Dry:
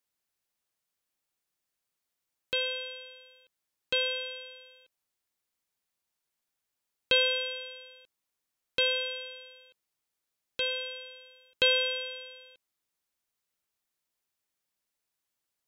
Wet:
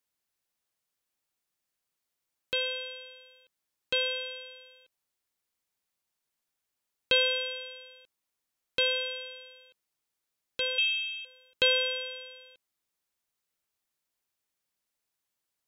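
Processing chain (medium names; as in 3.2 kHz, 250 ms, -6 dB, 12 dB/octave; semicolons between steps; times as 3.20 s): 10.78–11.25 s: resonant high-pass 2.8 kHz, resonance Q 7.8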